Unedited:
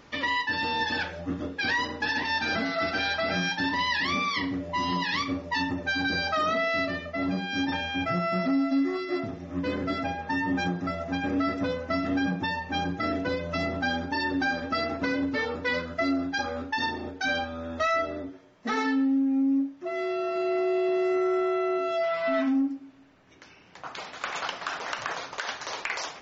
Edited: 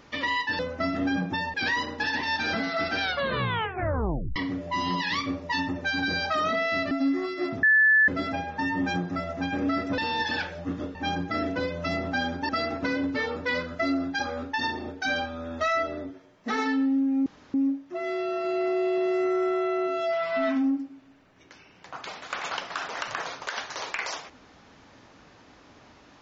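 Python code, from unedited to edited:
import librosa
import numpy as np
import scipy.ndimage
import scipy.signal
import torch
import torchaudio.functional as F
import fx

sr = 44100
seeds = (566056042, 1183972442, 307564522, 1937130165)

y = fx.edit(x, sr, fx.swap(start_s=0.59, length_s=0.97, other_s=11.69, other_length_s=0.95),
    fx.tape_stop(start_s=3.03, length_s=1.35),
    fx.cut(start_s=6.93, length_s=1.69),
    fx.bleep(start_s=9.34, length_s=0.45, hz=1740.0, db=-15.5),
    fx.cut(start_s=14.18, length_s=0.5),
    fx.insert_room_tone(at_s=19.45, length_s=0.28), tone=tone)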